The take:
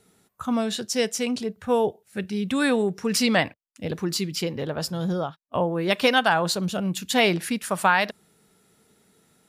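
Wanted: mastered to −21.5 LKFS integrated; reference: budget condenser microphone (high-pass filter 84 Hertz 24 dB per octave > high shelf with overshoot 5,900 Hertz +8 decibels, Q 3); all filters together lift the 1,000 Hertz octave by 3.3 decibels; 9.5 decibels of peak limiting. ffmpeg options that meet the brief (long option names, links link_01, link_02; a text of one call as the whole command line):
ffmpeg -i in.wav -af "equalizer=frequency=1000:width_type=o:gain=4.5,alimiter=limit=-13.5dB:level=0:latency=1,highpass=frequency=84:width=0.5412,highpass=frequency=84:width=1.3066,highshelf=frequency=5900:width_type=q:width=3:gain=8,volume=2.5dB" out.wav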